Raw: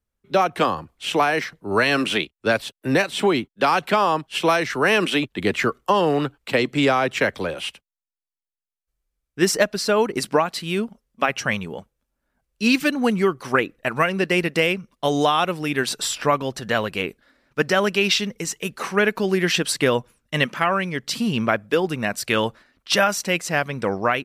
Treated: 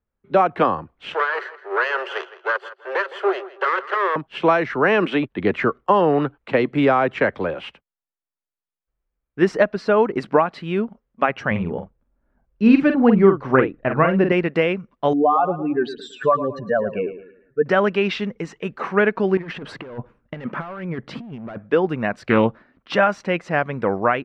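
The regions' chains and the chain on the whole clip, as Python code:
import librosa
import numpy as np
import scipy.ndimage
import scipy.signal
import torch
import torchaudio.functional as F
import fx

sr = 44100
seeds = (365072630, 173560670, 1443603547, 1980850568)

y = fx.chain(x, sr, fx.lower_of_two(delay_ms=0.66),
    fx.cheby_ripple_highpass(hz=370.0, ripple_db=3),
    fx.echo_tape(ms=163, feedback_pct=30, wet_db=-15.5, lp_hz=5400.0, drive_db=9.0, wow_cents=25), at=(1.14, 4.16))
y = fx.chain(y, sr, fx.tilt_eq(slope=-2.0),
    fx.doubler(ms=46.0, db=-7.0), at=(11.51, 14.32))
y = fx.chain(y, sr, fx.spec_expand(power=2.7),
    fx.echo_feedback(ms=110, feedback_pct=36, wet_db=-12.5), at=(15.13, 17.66))
y = fx.chain(y, sr, fx.high_shelf(hz=2300.0, db=-10.5),
    fx.clip_hard(threshold_db=-21.5),
    fx.over_compress(threshold_db=-30.0, ratio=-0.5), at=(19.37, 21.58))
y = fx.chain(y, sr, fx.peak_eq(hz=190.0, db=6.5, octaves=2.1),
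    fx.doppler_dist(depth_ms=0.16), at=(22.29, 22.93))
y = scipy.signal.sosfilt(scipy.signal.butter(2, 1700.0, 'lowpass', fs=sr, output='sos'), y)
y = fx.low_shelf(y, sr, hz=140.0, db=-4.0)
y = F.gain(torch.from_numpy(y), 3.0).numpy()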